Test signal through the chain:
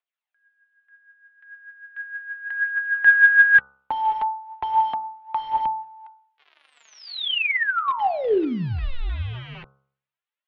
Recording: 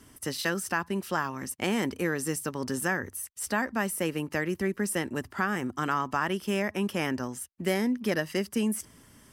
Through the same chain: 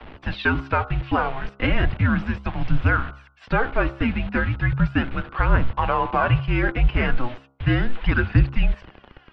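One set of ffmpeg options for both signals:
-filter_complex "[0:a]aphaser=in_gain=1:out_gain=1:delay=4.7:decay=0.55:speed=0.36:type=triangular,lowshelf=f=210:g=12,acrossover=split=830[a][b];[a]acrusher=bits=6:mix=0:aa=0.000001[c];[c][b]amix=inputs=2:normalize=0,highpass=f=190:t=q:w=0.5412,highpass=f=190:t=q:w=1.307,lowpass=f=3.6k:t=q:w=0.5176,lowpass=f=3.6k:t=q:w=0.7071,lowpass=f=3.6k:t=q:w=1.932,afreqshift=-250,bandreject=f=67.6:t=h:w=4,bandreject=f=135.2:t=h:w=4,bandreject=f=202.8:t=h:w=4,bandreject=f=270.4:t=h:w=4,bandreject=f=338:t=h:w=4,bandreject=f=405.6:t=h:w=4,bandreject=f=473.2:t=h:w=4,bandreject=f=540.8:t=h:w=4,bandreject=f=608.4:t=h:w=4,bandreject=f=676:t=h:w=4,bandreject=f=743.6:t=h:w=4,bandreject=f=811.2:t=h:w=4,bandreject=f=878.8:t=h:w=4,bandreject=f=946.4:t=h:w=4,bandreject=f=1.014k:t=h:w=4,bandreject=f=1.0816k:t=h:w=4,bandreject=f=1.1492k:t=h:w=4,bandreject=f=1.2168k:t=h:w=4,bandreject=f=1.2844k:t=h:w=4,bandreject=f=1.352k:t=h:w=4,bandreject=f=1.4196k:t=h:w=4,bandreject=f=1.4872k:t=h:w=4,volume=6.5dB"

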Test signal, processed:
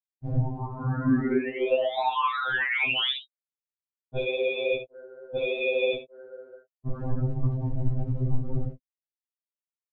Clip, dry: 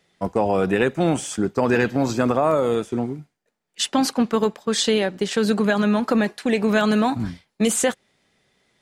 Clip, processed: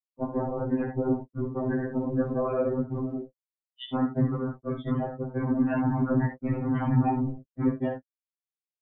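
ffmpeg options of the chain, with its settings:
-af "aemphasis=mode=reproduction:type=bsi,acompressor=threshold=-20dB:ratio=8,lowshelf=f=400:g=3.5,aresample=8000,acrusher=bits=3:mix=0:aa=0.5,aresample=44100,afftfilt=real='re*gte(hypot(re,im),0.0891)':imag='im*gte(hypot(re,im),0.0891)':win_size=1024:overlap=0.75,aecho=1:1:3.7:0.62,aecho=1:1:13|61|78:0.447|0.398|0.237,afftfilt=real='hypot(re,im)*cos(2*PI*random(0))':imag='hypot(re,im)*sin(2*PI*random(1))':win_size=512:overlap=0.75,afftfilt=real='re*2.45*eq(mod(b,6),0)':imag='im*2.45*eq(mod(b,6),0)':win_size=2048:overlap=0.75"

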